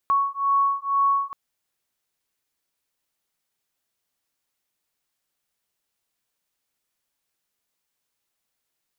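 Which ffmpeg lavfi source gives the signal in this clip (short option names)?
-f lavfi -i "aevalsrc='0.0794*(sin(2*PI*1110*t)+sin(2*PI*1112.1*t))':d=1.23:s=44100"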